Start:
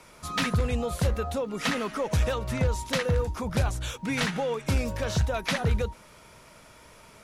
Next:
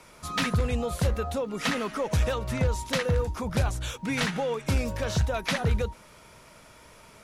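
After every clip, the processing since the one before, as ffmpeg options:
ffmpeg -i in.wav -af anull out.wav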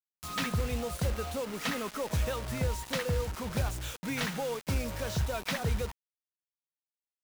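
ffmpeg -i in.wav -af "acrusher=bits=5:mix=0:aa=0.000001,acompressor=mode=upward:threshold=-37dB:ratio=2.5,volume=-5.5dB" out.wav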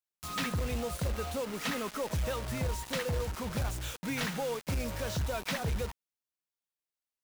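ffmpeg -i in.wav -af "asoftclip=type=hard:threshold=-27.5dB" out.wav

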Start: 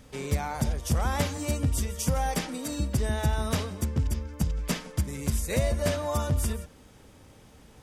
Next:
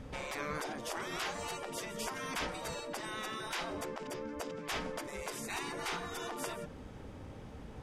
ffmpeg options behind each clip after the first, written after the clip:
ffmpeg -i in.wav -af "afftfilt=real='re*lt(hypot(re,im),0.0501)':imag='im*lt(hypot(re,im),0.0501)':win_size=1024:overlap=0.75,lowpass=frequency=1500:poles=1,volume=5.5dB" out.wav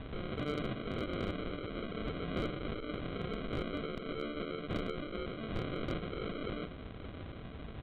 ffmpeg -i in.wav -af "aresample=8000,acrusher=samples=9:mix=1:aa=0.000001,aresample=44100,asoftclip=type=hard:threshold=-31dB,volume=2.5dB" out.wav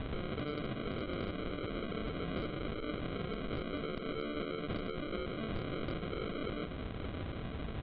ffmpeg -i in.wav -af "acompressor=threshold=-41dB:ratio=6,aresample=11025,aresample=44100,volume=6dB" out.wav

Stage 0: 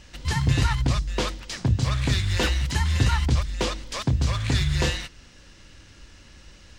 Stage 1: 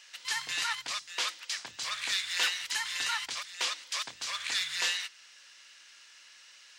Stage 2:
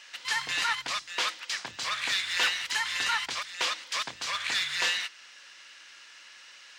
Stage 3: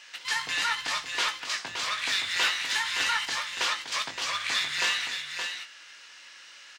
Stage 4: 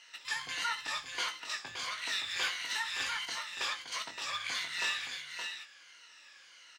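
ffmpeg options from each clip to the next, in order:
ffmpeg -i in.wav -af "highpass=1500" out.wav
ffmpeg -i in.wav -filter_complex "[0:a]asplit=2[link_01][link_02];[link_02]asoftclip=type=tanh:threshold=-33dB,volume=-4.5dB[link_03];[link_01][link_03]amix=inputs=2:normalize=0,highshelf=frequency=4100:gain=-9.5,volume=4dB" out.wav
ffmpeg -i in.wav -filter_complex "[0:a]asplit=2[link_01][link_02];[link_02]adelay=19,volume=-8dB[link_03];[link_01][link_03]amix=inputs=2:normalize=0,asplit=2[link_04][link_05];[link_05]aecho=0:1:62|289|570:0.15|0.15|0.473[link_06];[link_04][link_06]amix=inputs=2:normalize=0" out.wav
ffmpeg -i in.wav -af "afftfilt=real='re*pow(10,9/40*sin(2*PI*(1.9*log(max(b,1)*sr/1024/100)/log(2)-(-1.5)*(pts-256)/sr)))':imag='im*pow(10,9/40*sin(2*PI*(1.9*log(max(b,1)*sr/1024/100)/log(2)-(-1.5)*(pts-256)/sr)))':win_size=1024:overlap=0.75,volume=-8.5dB" out.wav

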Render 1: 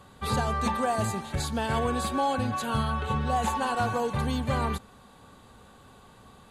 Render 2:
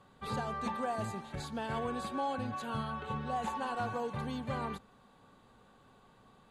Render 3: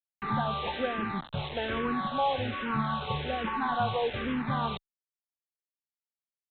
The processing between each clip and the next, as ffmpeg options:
ffmpeg -i in.wav -af "lowpass=frequency=3800:poles=1,equalizer=frequency=71:width_type=o:width=0.58:gain=-12,volume=-8dB" out.wav
ffmpeg -i in.wav -filter_complex "[0:a]aresample=8000,acrusher=bits=6:mix=0:aa=0.000001,aresample=44100,asplit=2[link_01][link_02];[link_02]afreqshift=-1.2[link_03];[link_01][link_03]amix=inputs=2:normalize=1,volume=8.5dB" out.wav

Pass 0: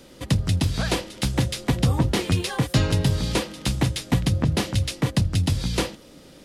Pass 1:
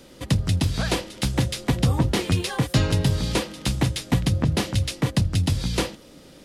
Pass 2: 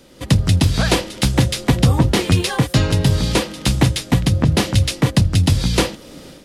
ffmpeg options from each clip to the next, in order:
ffmpeg -i in.wav -af anull out.wav
ffmpeg -i in.wav -af "dynaudnorm=framelen=150:gausssize=3:maxgain=10dB" out.wav

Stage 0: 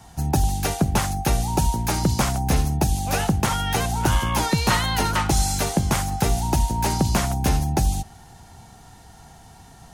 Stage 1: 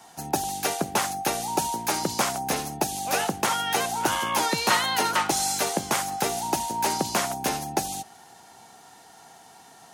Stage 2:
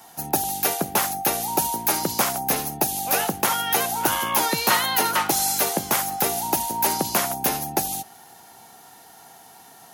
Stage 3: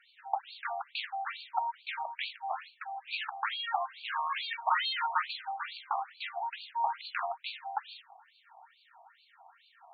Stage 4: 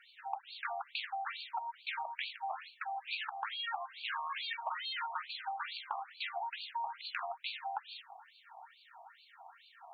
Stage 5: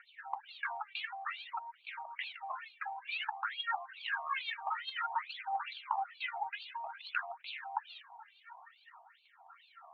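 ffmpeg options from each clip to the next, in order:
ffmpeg -i in.wav -af "highpass=340" out.wav
ffmpeg -i in.wav -af "aexciter=amount=5.4:drive=2:freq=11000,volume=1.5dB" out.wav
ffmpeg -i in.wav -af "afftfilt=real='re*between(b*sr/1024,850*pow(3300/850,0.5+0.5*sin(2*PI*2.3*pts/sr))/1.41,850*pow(3300/850,0.5+0.5*sin(2*PI*2.3*pts/sr))*1.41)':imag='im*between(b*sr/1024,850*pow(3300/850,0.5+0.5*sin(2*PI*2.3*pts/sr))/1.41,850*pow(3300/850,0.5+0.5*sin(2*PI*2.3*pts/sr))*1.41)':win_size=1024:overlap=0.75,volume=-4dB" out.wav
ffmpeg -i in.wav -af "acompressor=threshold=-38dB:ratio=12,volume=2.5dB" out.wav
ffmpeg -i in.wav -af "aphaser=in_gain=1:out_gain=1:delay=2.6:decay=0.72:speed=0.54:type=triangular,highpass=640,lowpass=2600" out.wav

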